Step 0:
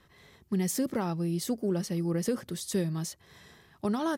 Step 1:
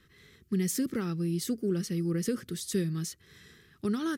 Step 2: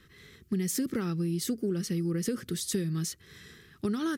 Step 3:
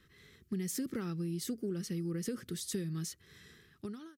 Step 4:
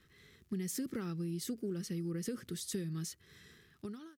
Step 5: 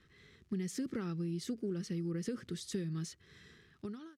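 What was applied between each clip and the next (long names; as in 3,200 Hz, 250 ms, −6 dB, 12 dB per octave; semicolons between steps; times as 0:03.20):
flat-topped bell 760 Hz −15 dB 1.1 octaves
downward compressor 4 to 1, threshold −31 dBFS, peak gain reduction 6.5 dB; level +4 dB
fade-out on the ending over 0.54 s; level −6.5 dB
surface crackle 82 per second −55 dBFS; level −1.5 dB
high-frequency loss of the air 63 metres; level +1 dB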